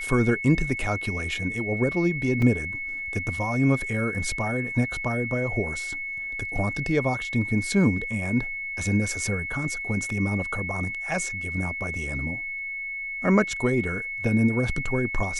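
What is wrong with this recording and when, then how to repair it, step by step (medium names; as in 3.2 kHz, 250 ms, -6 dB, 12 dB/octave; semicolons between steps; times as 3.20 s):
whine 2.2 kHz -30 dBFS
2.42 s: dropout 3.4 ms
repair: band-stop 2.2 kHz, Q 30; interpolate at 2.42 s, 3.4 ms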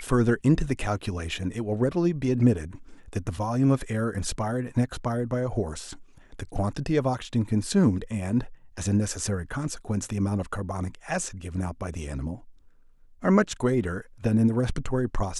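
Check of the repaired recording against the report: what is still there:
nothing left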